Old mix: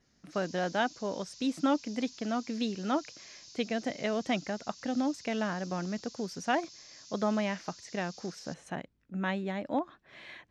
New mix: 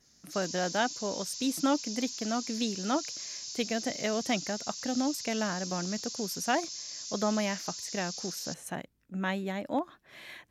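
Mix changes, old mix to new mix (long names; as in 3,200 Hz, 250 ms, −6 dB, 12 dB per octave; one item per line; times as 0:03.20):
background +5.5 dB
master: remove high-frequency loss of the air 110 metres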